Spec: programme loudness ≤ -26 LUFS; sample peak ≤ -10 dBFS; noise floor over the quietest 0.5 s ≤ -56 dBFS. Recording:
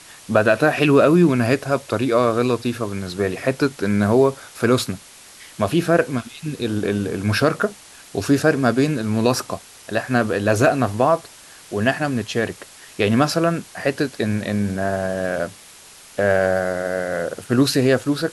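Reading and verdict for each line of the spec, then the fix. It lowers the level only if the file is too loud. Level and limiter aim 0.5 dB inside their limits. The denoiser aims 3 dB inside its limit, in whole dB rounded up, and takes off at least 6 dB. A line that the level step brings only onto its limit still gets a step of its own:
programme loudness -20.0 LUFS: fail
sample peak -2.5 dBFS: fail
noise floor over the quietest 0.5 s -44 dBFS: fail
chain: noise reduction 9 dB, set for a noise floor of -44 dBFS; trim -6.5 dB; peak limiter -10.5 dBFS

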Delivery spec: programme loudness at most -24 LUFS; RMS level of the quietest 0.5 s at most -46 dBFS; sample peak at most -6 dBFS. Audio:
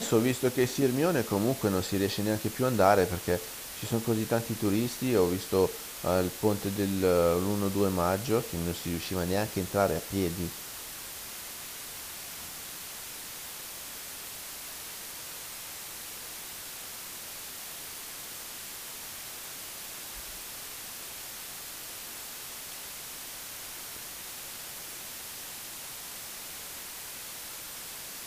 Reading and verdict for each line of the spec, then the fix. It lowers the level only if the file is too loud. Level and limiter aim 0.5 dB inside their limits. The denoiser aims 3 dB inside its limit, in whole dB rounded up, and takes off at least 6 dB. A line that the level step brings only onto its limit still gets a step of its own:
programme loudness -32.0 LUFS: pass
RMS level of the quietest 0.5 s -42 dBFS: fail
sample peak -8.0 dBFS: pass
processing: noise reduction 7 dB, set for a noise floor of -42 dBFS

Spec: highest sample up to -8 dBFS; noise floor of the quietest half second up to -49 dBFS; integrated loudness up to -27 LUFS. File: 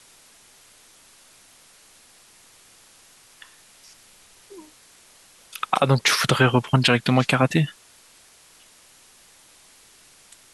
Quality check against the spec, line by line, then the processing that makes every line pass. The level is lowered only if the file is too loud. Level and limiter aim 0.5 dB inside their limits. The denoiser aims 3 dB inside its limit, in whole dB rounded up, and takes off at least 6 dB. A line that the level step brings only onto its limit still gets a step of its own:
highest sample -4.0 dBFS: fail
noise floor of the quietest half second -53 dBFS: pass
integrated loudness -20.0 LUFS: fail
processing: trim -7.5 dB

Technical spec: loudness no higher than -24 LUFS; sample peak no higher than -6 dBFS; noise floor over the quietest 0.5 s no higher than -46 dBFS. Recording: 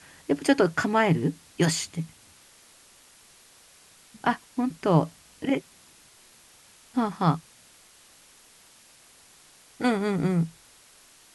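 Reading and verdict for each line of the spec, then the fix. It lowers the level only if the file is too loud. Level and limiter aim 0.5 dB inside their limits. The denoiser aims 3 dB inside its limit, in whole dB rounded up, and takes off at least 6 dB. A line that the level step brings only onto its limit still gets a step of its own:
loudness -26.5 LUFS: pass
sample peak -7.0 dBFS: pass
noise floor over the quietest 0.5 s -55 dBFS: pass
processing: none needed

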